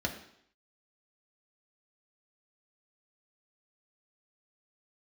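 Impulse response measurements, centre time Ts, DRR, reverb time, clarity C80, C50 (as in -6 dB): 16 ms, 1.0 dB, 0.70 s, 12.0 dB, 9.5 dB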